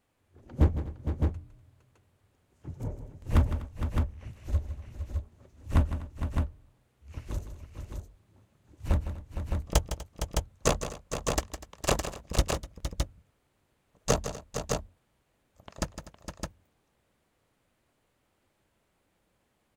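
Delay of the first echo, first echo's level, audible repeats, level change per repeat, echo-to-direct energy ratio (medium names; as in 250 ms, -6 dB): 158 ms, -11.0 dB, 4, no regular repeats, -3.0 dB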